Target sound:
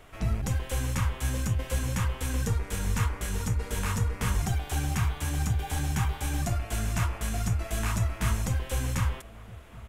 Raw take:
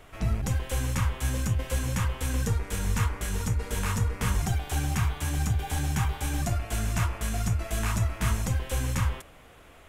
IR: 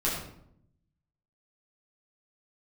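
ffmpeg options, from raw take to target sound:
-filter_complex "[0:a]asplit=2[link_01][link_02];[link_02]adelay=1516,volume=-18dB,highshelf=frequency=4000:gain=-34.1[link_03];[link_01][link_03]amix=inputs=2:normalize=0,volume=-1dB"

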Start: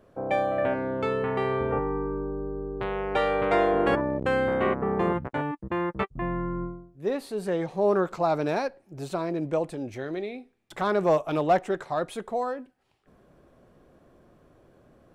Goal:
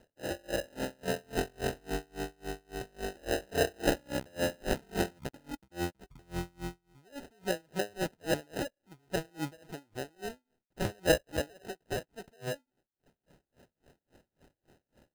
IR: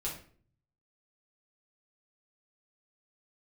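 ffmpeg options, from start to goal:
-filter_complex "[0:a]asettb=1/sr,asplit=3[link_01][link_02][link_03];[link_01]atrim=end=11.314[link_04];[link_02]atrim=start=11.31:end=12.31,asetpts=PTS-STARTPTS,afade=type=in:duration=0.004:curve=qsin,afade=type=out:start_time=0.996:duration=0.004:curve=qsin,lowshelf=frequency=310:gain=-9[link_05];[link_03]atrim=start=12.306[link_06];[link_04][link_05]acrossfade=duration=0.004:curve1=hsin:curve2=qsin[link_07];[link_07][link_06]acrossfade=duration=0.004:curve1=qsin:curve2=hsin,acrusher=samples=39:mix=1:aa=0.000001,aeval=exprs='val(0)*pow(10,-34*(0.5-0.5*cos(2*PI*3.6*n/s))/20)':channel_layout=same,volume=-2dB"

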